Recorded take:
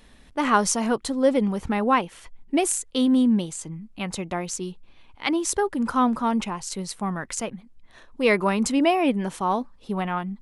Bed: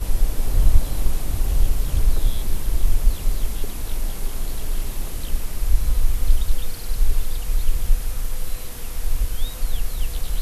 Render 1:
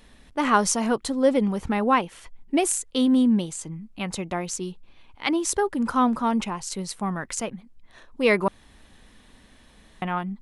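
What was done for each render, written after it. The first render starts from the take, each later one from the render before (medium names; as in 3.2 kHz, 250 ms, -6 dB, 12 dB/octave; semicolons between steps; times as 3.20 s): 8.48–10.02 s: room tone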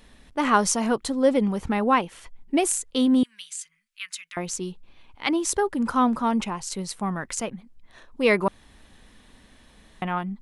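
3.23–4.37 s: inverse Chebyshev high-pass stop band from 820 Hz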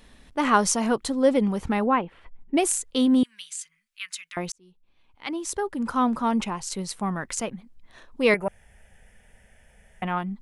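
1.86–2.57 s: distance through air 470 m; 4.52–6.38 s: fade in; 8.34–10.03 s: static phaser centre 1.1 kHz, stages 6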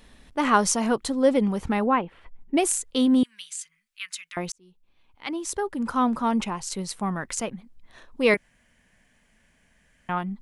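8.37–10.09 s: room tone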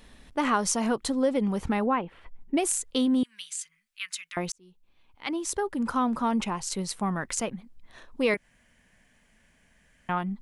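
compression 2.5:1, threshold -23 dBFS, peak gain reduction 7 dB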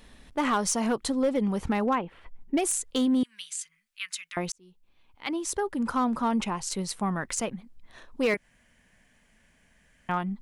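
hard clipper -18.5 dBFS, distortion -21 dB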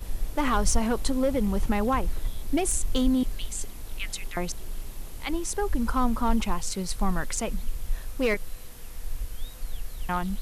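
add bed -11 dB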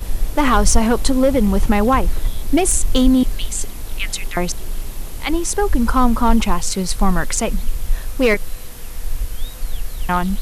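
trim +10 dB; peak limiter -1 dBFS, peak gain reduction 1 dB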